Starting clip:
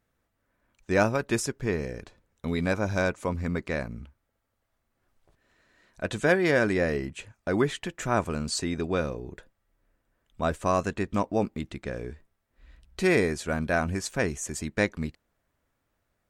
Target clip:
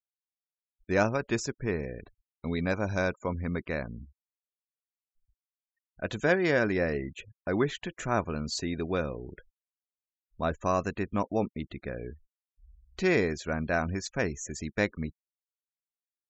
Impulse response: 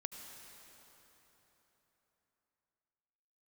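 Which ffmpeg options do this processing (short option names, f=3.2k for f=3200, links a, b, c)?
-af "aresample=16000,aresample=44100,afftfilt=real='re*gte(hypot(re,im),0.00708)':imag='im*gte(hypot(re,im),0.00708)':win_size=1024:overlap=0.75,volume=-2.5dB"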